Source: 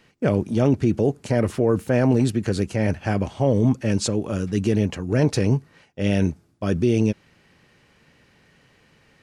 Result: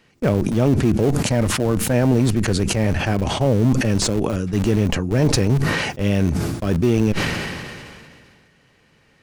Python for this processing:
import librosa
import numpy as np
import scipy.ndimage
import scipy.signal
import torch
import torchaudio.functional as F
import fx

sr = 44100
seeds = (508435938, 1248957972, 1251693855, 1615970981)

p1 = fx.peak_eq(x, sr, hz=410.0, db=-10.0, octaves=0.3, at=(1.1, 1.94))
p2 = fx.schmitt(p1, sr, flips_db=-20.5)
p3 = p1 + (p2 * 10.0 ** (-7.0 / 20.0))
y = fx.sustainer(p3, sr, db_per_s=28.0)